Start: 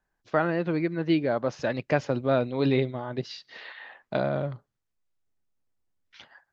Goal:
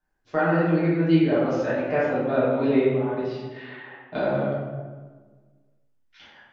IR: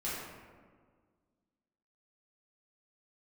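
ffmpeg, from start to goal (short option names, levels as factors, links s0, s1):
-filter_complex "[0:a]asettb=1/sr,asplit=3[s0][s1][s2];[s0]atrim=end=1.614[s3];[s1]atrim=start=1.61:end=4.14,asetpts=PTS-STARTPTS,afade=t=in:d=0.004:c=qsin,afade=t=out:st=2.526:d=0.004:c=qsin,bass=f=250:g=-3,treble=f=4000:g=-13[s4];[s2]atrim=start=4.136[s5];[s3][s4]acrossfade=d=0.004:c1=hsin:c2=qsin[s6];[s6][s5]acrossfade=d=0.004:c1=qsin:c2=hsin[s7];[1:a]atrim=start_sample=2205,asetrate=52920,aresample=44100[s8];[s7][s8]afir=irnorm=-1:irlink=0"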